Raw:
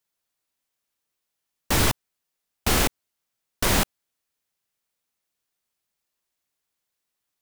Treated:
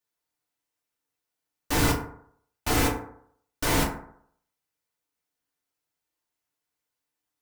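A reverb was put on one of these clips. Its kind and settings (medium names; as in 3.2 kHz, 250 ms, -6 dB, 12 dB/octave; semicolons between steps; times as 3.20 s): FDN reverb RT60 0.64 s, low-frequency decay 0.9×, high-frequency decay 0.4×, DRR -5 dB; trim -8 dB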